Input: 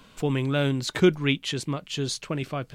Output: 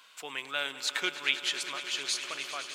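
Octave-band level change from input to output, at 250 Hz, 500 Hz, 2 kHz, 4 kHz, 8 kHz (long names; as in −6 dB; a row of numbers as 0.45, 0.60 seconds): −23.5, −16.5, 0.0, +1.0, +0.5 decibels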